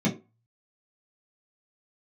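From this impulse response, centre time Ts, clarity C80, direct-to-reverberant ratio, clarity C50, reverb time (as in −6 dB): 19 ms, 17.0 dB, −5.0 dB, 11.0 dB, 0.30 s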